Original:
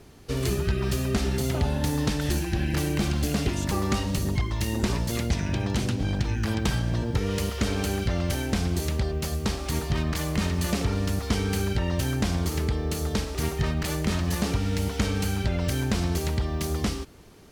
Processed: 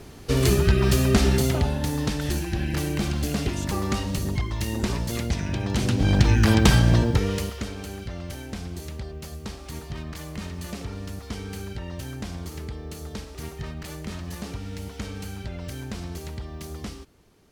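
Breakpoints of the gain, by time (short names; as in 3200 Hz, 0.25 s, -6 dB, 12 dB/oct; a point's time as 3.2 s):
1.32 s +6.5 dB
1.79 s -0.5 dB
5.63 s -0.5 dB
6.22 s +9 dB
6.93 s +9 dB
7.38 s 0 dB
7.74 s -8.5 dB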